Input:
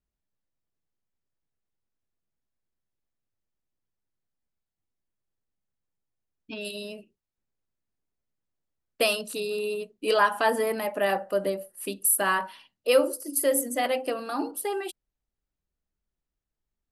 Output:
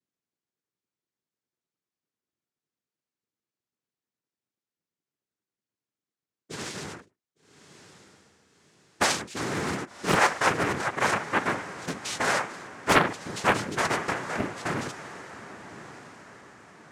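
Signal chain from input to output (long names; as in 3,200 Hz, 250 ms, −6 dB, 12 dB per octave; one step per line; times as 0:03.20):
cochlear-implant simulation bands 3
feedback delay with all-pass diffusion 1,163 ms, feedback 41%, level −14.5 dB
highs frequency-modulated by the lows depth 0.83 ms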